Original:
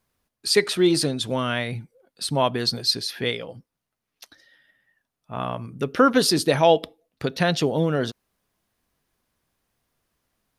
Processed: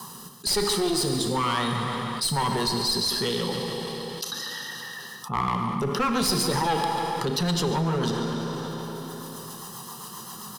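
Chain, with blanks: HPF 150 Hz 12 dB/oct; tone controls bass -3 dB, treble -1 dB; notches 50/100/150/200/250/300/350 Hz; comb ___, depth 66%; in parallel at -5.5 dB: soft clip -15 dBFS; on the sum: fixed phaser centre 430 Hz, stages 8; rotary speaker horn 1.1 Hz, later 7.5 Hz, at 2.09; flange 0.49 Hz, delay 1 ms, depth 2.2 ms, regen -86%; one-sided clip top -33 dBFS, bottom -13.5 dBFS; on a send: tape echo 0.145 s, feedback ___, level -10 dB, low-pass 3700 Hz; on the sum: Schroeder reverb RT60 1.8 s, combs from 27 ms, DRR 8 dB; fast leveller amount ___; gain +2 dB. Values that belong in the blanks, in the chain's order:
1 ms, 57%, 70%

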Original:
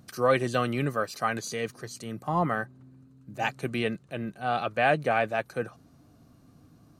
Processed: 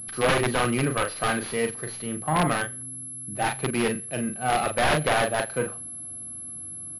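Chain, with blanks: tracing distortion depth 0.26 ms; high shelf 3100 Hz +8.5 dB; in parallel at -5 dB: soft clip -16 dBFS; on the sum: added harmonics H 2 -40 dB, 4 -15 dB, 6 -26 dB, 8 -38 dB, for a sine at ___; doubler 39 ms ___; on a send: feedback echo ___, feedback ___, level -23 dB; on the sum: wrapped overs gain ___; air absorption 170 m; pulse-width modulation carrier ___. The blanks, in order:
-5 dBFS, -6 dB, 83 ms, 27%, 12.5 dB, 11000 Hz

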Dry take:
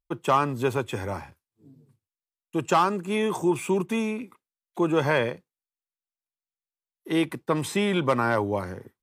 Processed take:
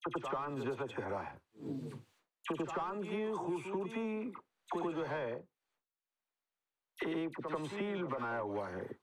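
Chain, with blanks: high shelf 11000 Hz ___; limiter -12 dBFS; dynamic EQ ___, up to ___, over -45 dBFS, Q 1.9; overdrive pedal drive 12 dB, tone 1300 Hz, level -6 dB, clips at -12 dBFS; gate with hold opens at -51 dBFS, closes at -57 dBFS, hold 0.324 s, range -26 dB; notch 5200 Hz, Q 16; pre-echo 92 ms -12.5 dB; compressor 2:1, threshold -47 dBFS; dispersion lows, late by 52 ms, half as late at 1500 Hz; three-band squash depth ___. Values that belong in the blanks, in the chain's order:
-11 dB, 2200 Hz, -3 dB, 100%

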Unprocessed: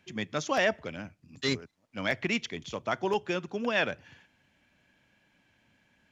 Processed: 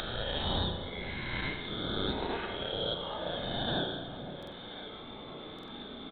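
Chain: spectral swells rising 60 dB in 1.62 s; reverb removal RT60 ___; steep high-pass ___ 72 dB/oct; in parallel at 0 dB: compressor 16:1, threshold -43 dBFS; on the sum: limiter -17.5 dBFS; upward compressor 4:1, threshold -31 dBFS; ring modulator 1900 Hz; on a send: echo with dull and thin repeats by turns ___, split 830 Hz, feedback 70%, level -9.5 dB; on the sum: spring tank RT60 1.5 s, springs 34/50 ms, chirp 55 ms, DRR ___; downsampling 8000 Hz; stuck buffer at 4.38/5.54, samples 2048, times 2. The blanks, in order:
1.8 s, 1200 Hz, 0.515 s, 2.5 dB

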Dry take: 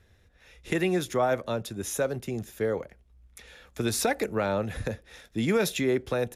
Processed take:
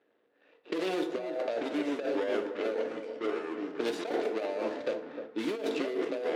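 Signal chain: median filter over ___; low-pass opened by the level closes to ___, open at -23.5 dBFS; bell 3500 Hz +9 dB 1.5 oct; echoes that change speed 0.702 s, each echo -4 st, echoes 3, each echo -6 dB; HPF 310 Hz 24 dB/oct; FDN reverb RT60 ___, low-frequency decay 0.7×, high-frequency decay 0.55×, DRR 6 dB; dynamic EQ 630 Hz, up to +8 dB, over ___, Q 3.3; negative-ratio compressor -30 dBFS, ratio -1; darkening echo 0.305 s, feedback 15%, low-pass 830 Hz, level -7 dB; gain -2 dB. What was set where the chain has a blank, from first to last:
41 samples, 2400 Hz, 0.75 s, -44 dBFS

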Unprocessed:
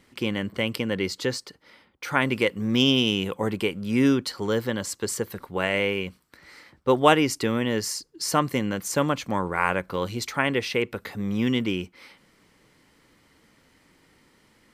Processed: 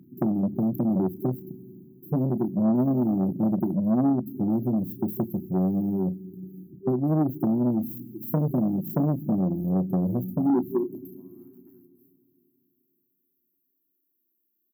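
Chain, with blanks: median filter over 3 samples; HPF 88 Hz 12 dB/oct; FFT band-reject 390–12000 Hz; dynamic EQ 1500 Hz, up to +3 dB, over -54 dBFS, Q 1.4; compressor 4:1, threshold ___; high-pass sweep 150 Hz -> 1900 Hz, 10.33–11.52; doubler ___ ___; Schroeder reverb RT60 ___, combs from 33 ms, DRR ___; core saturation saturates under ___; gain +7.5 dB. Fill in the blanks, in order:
-31 dBFS, 32 ms, -10.5 dB, 3.2 s, 14.5 dB, 450 Hz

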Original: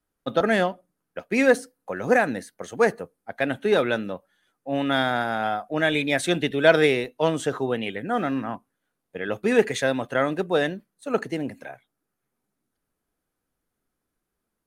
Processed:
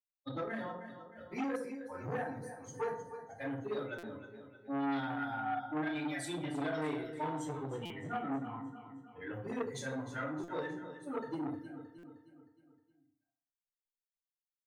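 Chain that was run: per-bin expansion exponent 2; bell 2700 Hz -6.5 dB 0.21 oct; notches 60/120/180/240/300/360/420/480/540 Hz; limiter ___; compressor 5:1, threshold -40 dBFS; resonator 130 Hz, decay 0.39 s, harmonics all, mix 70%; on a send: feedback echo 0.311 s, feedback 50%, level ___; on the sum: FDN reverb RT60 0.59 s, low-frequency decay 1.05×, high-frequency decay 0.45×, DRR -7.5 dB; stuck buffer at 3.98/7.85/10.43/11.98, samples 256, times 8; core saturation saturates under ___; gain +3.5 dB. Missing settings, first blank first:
-15.5 dBFS, -12 dB, 910 Hz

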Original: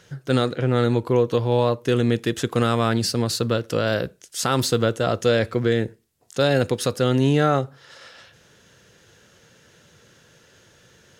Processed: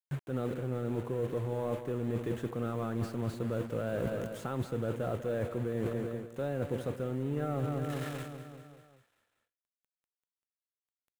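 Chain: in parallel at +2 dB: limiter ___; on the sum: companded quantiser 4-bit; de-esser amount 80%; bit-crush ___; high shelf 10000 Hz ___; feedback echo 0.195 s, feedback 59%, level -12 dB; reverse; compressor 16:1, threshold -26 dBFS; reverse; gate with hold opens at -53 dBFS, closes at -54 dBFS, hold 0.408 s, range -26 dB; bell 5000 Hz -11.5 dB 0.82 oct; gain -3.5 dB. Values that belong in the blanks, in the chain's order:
-19 dBFS, 6-bit, -10.5 dB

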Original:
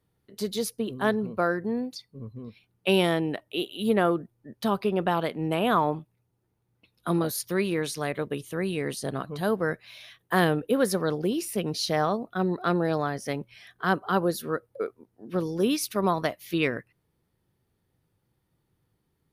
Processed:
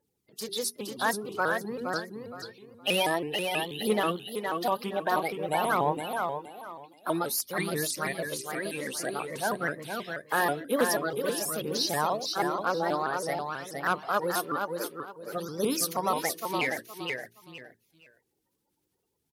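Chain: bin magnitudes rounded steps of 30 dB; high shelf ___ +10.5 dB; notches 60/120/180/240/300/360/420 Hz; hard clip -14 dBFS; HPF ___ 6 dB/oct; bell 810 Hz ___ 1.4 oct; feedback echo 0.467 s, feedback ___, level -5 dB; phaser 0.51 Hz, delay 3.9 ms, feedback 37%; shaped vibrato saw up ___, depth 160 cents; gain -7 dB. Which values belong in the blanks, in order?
2600 Hz, 130 Hz, +6 dB, 25%, 6.2 Hz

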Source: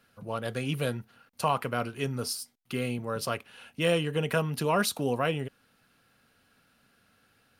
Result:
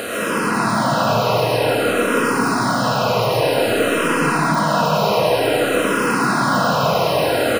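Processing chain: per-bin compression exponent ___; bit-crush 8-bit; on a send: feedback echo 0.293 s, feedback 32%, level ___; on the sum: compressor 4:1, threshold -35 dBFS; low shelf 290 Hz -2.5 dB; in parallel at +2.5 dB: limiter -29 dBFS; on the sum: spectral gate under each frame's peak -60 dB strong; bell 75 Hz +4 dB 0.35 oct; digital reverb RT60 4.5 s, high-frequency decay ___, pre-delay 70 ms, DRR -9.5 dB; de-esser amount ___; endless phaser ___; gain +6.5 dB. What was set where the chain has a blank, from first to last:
0.2, -4.5 dB, 0.35×, 60%, -0.53 Hz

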